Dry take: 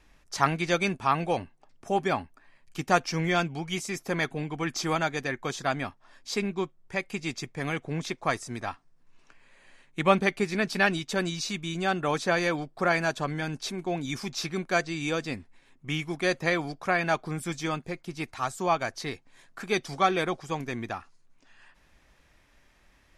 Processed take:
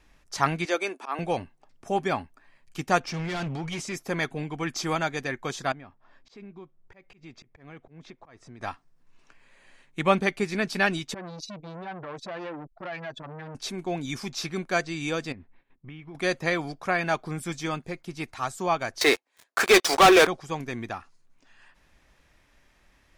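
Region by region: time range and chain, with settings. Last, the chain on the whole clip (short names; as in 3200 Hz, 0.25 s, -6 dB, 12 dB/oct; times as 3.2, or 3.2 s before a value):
0.65–1.19 steep high-pass 290 Hz + dynamic EQ 4000 Hz, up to -4 dB, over -40 dBFS, Q 0.7 + auto swell 0.127 s
3–3.93 transient shaper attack +4 dB, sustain +8 dB + hard clip -28.5 dBFS + air absorption 59 m
5.72–8.61 tape spacing loss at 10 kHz 24 dB + compressor 3:1, threshold -45 dBFS + auto swell 0.129 s
11.14–13.55 spectral contrast raised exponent 1.9 + compressor 3:1, threshold -31 dBFS + core saturation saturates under 1300 Hz
15.32–16.15 gate -59 dBFS, range -13 dB + compressor 4:1, threshold -39 dBFS + air absorption 420 m
19.01–20.27 HPF 360 Hz 24 dB/oct + sample leveller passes 5
whole clip: dry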